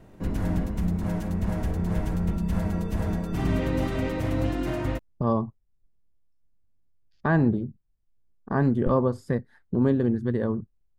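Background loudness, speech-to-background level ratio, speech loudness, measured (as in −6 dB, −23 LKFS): −28.0 LKFS, 2.5 dB, −25.5 LKFS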